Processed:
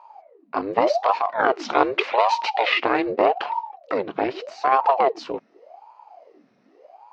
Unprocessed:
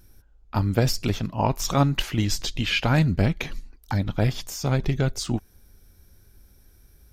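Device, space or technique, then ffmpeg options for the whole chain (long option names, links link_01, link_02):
voice changer toy: -filter_complex "[0:a]asettb=1/sr,asplit=3[link_01][link_02][link_03];[link_01]atrim=end=1.204[link_04];[link_02]atrim=start=1.2:end=2.74,asetpts=PTS-STARTPTS,afade=type=in:duration=0.004:curve=qsin,afade=type=out:start_time=1.536:duration=0.004:curve=qsin,equalizer=frequency=3400:width=0.43:gain=4.5[link_05];[link_03]atrim=start=2.736[link_06];[link_04][link_05]acrossfade=duration=0.004:curve1=hsin:curve2=qsin[link_07];[link_07][link_06]acrossfade=duration=0.004:curve1=qsin:curve2=hsin,aeval=exprs='val(0)*sin(2*PI*550*n/s+550*0.7/0.84*sin(2*PI*0.84*n/s))':channel_layout=same,highpass=460,equalizer=frequency=690:width_type=q:width=4:gain=4,equalizer=frequency=1600:width_type=q:width=4:gain=-3,equalizer=frequency=3400:width_type=q:width=4:gain=-9,lowpass=frequency=3600:width=0.5412,lowpass=frequency=3600:width=1.3066,volume=7dB"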